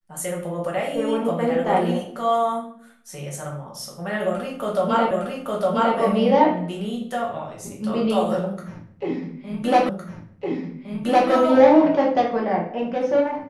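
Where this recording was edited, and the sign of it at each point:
5.11 s: repeat of the last 0.86 s
9.89 s: repeat of the last 1.41 s

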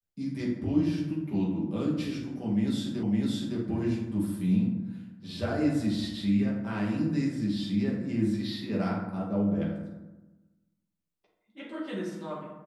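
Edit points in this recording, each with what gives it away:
3.03 s: repeat of the last 0.56 s

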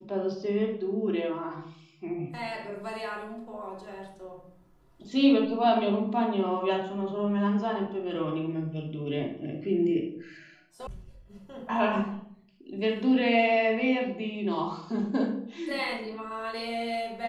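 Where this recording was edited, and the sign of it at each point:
10.87 s: sound stops dead

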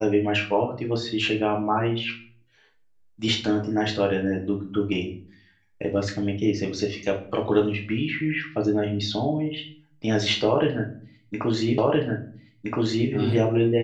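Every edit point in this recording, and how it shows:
11.78 s: repeat of the last 1.32 s

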